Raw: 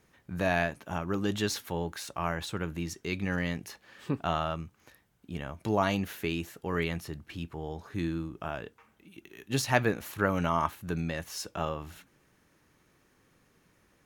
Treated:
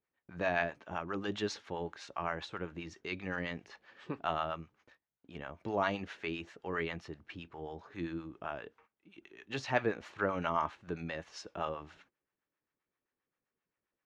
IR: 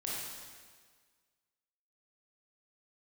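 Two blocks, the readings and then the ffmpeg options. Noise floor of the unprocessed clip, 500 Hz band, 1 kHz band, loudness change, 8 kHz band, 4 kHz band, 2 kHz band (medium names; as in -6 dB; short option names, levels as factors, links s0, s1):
-68 dBFS, -4.5 dB, -4.0 dB, -5.5 dB, -14.5 dB, -6.5 dB, -4.0 dB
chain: -filter_complex "[0:a]lowpass=f=6600:w=0.5412,lowpass=f=6600:w=1.3066,agate=range=0.112:threshold=0.00126:ratio=16:detection=peak,bass=f=250:g=-9,treble=f=4000:g=-9,acrossover=split=610[s0][s1];[s0]aeval=exprs='val(0)*(1-0.7/2+0.7/2*cos(2*PI*7.6*n/s))':c=same[s2];[s1]aeval=exprs='val(0)*(1-0.7/2-0.7/2*cos(2*PI*7.6*n/s))':c=same[s3];[s2][s3]amix=inputs=2:normalize=0"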